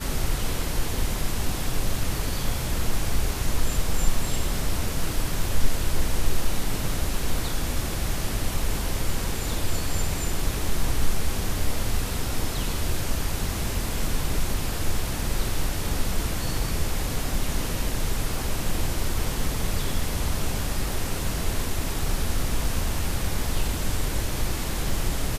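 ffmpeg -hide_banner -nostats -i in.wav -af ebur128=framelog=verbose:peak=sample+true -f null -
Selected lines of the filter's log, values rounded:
Integrated loudness:
  I:         -28.8 LUFS
  Threshold: -38.8 LUFS
Loudness range:
  LRA:         0.4 LU
  Threshold: -48.8 LUFS
  LRA low:   -28.9 LUFS
  LRA high:  -28.5 LUFS
Sample peak:
  Peak:       -5.6 dBFS
True peak:
  Peak:       -5.6 dBFS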